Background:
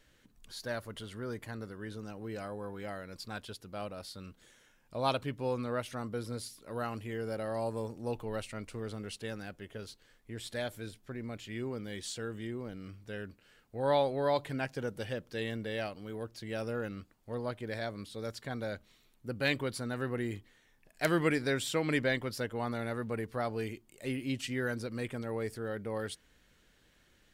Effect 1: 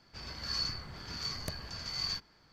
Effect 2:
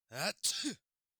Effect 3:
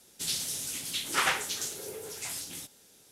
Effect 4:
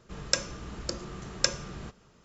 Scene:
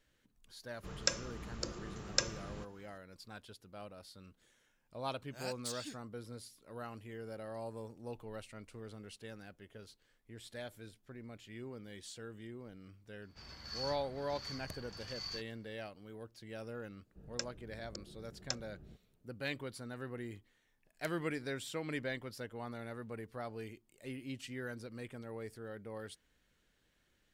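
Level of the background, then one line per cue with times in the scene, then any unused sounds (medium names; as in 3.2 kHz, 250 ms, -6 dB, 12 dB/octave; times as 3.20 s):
background -9 dB
0.74 s: add 4 -6 dB
5.21 s: add 2 -9 dB
13.22 s: add 1 -8.5 dB
17.06 s: add 4 -13.5 dB + local Wiener filter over 41 samples
not used: 3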